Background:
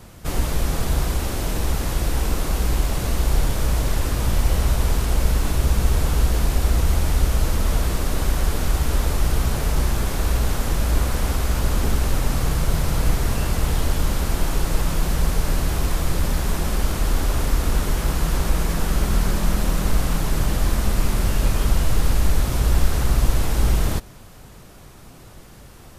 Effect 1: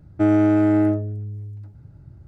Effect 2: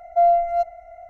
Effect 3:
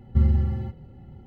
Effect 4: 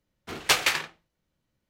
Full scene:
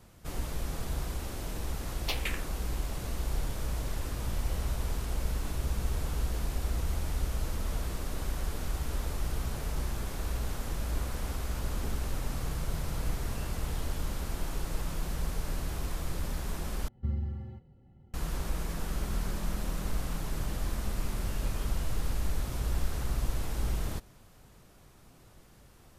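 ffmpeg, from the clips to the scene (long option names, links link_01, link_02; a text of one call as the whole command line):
ffmpeg -i bed.wav -i cue0.wav -i cue1.wav -i cue2.wav -i cue3.wav -filter_complex "[0:a]volume=-13dB[link_01];[4:a]asplit=2[link_02][link_03];[link_03]afreqshift=-1.5[link_04];[link_02][link_04]amix=inputs=2:normalize=1[link_05];[link_01]asplit=2[link_06][link_07];[link_06]atrim=end=16.884[link_08];[3:a]atrim=end=1.26,asetpts=PTS-STARTPTS,volume=-13dB[link_09];[link_07]atrim=start=18.136[link_10];[link_05]atrim=end=1.69,asetpts=PTS-STARTPTS,volume=-11dB,afade=type=in:duration=0.004:curve=hsin,afade=type=out:start_time=1.686:duration=0.004:curve=hsin,adelay=1590[link_11];[link_08][link_09]acrossfade=duration=0.004:curve1=hsin:curve2=hsin[link_12];[link_12][link_10]acrossfade=duration=0.004:curve1=hsin:curve2=hsin[link_13];[link_13][link_11]amix=inputs=2:normalize=0" out.wav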